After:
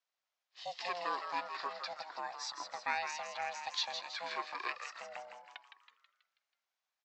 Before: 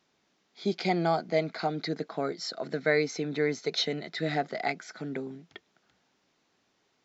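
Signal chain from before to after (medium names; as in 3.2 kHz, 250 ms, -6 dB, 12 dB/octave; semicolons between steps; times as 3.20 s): in parallel at +2 dB: compression, threshold -49 dBFS, peak gain reduction 26 dB; on the sum: spectral noise reduction 17 dB; ring modulator 350 Hz; high-pass 770 Hz 12 dB/octave; on a send: frequency-shifting echo 162 ms, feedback 50%, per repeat +120 Hz, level -7.5 dB; on the sum: trim -5 dB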